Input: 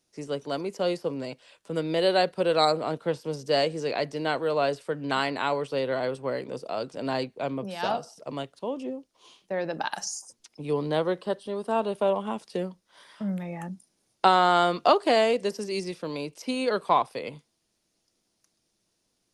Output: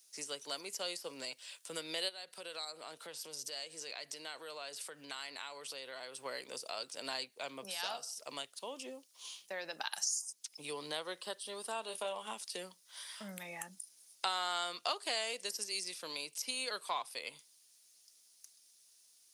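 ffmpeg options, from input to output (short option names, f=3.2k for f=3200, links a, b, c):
-filter_complex "[0:a]asplit=3[a][b][c];[a]afade=t=out:st=2.08:d=0.02[d];[b]acompressor=threshold=-39dB:ratio=3:attack=3.2:release=140:knee=1:detection=peak,afade=t=in:st=2.08:d=0.02,afade=t=out:st=6.24:d=0.02[e];[c]afade=t=in:st=6.24:d=0.02[f];[d][e][f]amix=inputs=3:normalize=0,asettb=1/sr,asplit=3[g][h][i];[g]atrim=end=11.834[j];[h]atrim=start=11.83:end=12.34,asetpts=PTS-STARTPTS,afade=t=in:d=0.004:c=qsin,afade=t=out:st=0.506:d=0.004:c=qsin,asplit=2[k][l];[l]adelay=27,volume=-8dB[m];[k][m]amix=inputs=2:normalize=0,atrim=end_sample=22491[n];[i]atrim=start=12.336[o];[j][n]acrossfade=d=0.004:c1=hsin:c2=qsin[p];[p][o]acrossfade=d=0.004:c1=qsin:c2=hsin,aderivative,acompressor=threshold=-55dB:ratio=2,volume=12.5dB"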